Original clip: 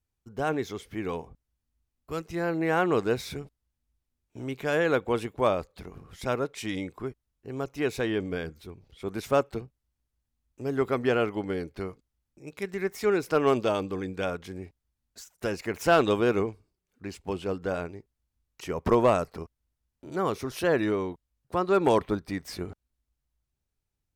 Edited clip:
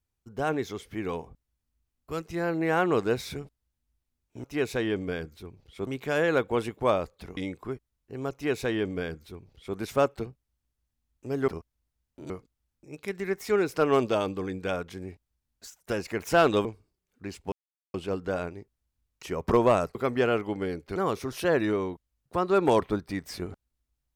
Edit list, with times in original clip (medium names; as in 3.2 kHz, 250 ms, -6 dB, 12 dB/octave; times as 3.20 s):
5.94–6.72 s: delete
7.68–9.11 s: copy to 4.44 s
10.83–11.84 s: swap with 19.33–20.15 s
16.19–16.45 s: delete
17.32 s: insert silence 0.42 s